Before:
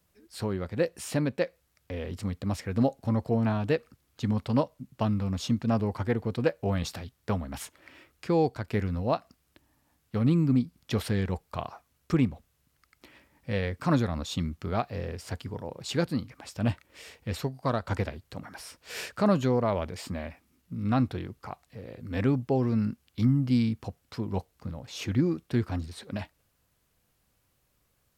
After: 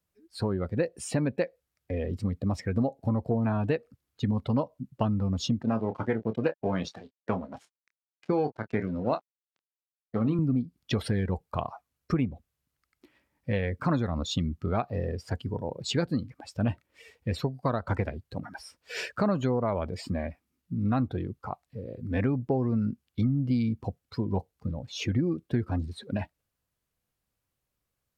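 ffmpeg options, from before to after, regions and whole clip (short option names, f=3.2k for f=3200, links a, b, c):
-filter_complex "[0:a]asettb=1/sr,asplit=3[a][b][c];[a]atrim=end=5.634[d];[b]atrim=start=5.63:end=10.39,asetpts=PTS-STARTPTS,afade=t=in:d=0.004:c=qsin,afade=t=out:st=4.756:d=0.004:c=qsin,aeval=exprs='sgn(val(0))*max(abs(val(0))-0.00891,0)':c=same,highpass=150,lowpass=6.7k,asplit=2[e][f];[f]adelay=27,volume=-9dB[g];[e][g]amix=inputs=2:normalize=0,atrim=end_sample=209916[h];[c]atrim=start=10.386[i];[d][h]acrossfade=d=0.004:c1=hsin:c2=qsin[j];[j][i]acrossfade=d=0.004:c1=qsin:c2=hsin,afftdn=nr=16:nf=-41,acompressor=threshold=-28dB:ratio=4,volume=4.5dB"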